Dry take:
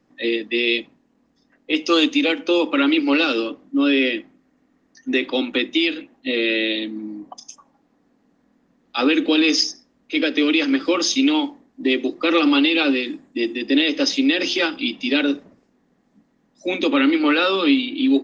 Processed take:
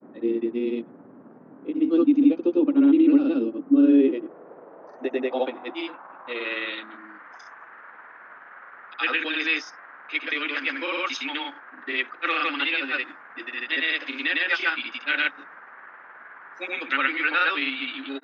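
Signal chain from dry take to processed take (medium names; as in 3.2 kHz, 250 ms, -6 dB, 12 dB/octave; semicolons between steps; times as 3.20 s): band noise 130–1500 Hz -42 dBFS; band-pass sweep 260 Hz -> 1.7 kHz, 3.43–7.12 s; granulator 106 ms, grains 19 per s, pitch spread up and down by 0 st; trim +5 dB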